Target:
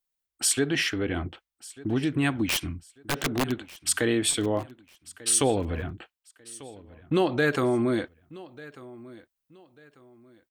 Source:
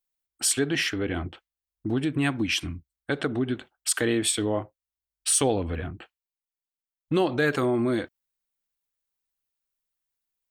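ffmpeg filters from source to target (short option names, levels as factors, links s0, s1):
-filter_complex "[0:a]asplit=3[s0][s1][s2];[s0]afade=t=out:st=2.44:d=0.02[s3];[s1]aeval=exprs='(mod(8.91*val(0)+1,2)-1)/8.91':c=same,afade=t=in:st=2.44:d=0.02,afade=t=out:st=3.5:d=0.02[s4];[s2]afade=t=in:st=3.5:d=0.02[s5];[s3][s4][s5]amix=inputs=3:normalize=0,aecho=1:1:1193|2386:0.1|0.03"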